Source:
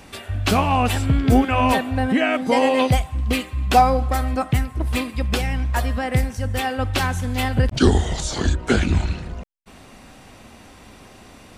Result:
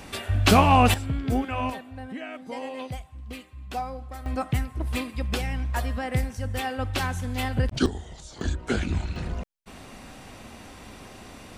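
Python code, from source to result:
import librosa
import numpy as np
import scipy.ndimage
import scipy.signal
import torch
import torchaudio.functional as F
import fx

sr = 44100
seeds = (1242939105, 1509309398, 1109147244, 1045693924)

y = fx.gain(x, sr, db=fx.steps((0.0, 1.5), (0.94, -10.0), (1.7, -17.5), (4.26, -6.0), (7.86, -18.0), (8.41, -8.0), (9.16, 0.5)))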